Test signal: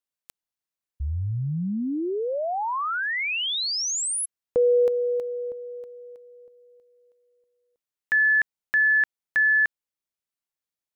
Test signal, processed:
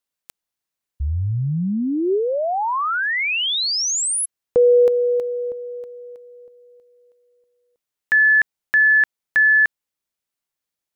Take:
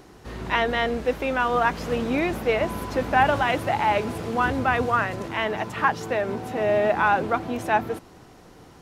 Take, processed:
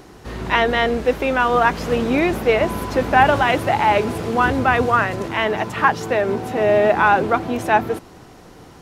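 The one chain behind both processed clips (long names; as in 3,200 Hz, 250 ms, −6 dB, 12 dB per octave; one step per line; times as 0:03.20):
dynamic equaliser 390 Hz, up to +4 dB, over −39 dBFS, Q 5.8
level +5.5 dB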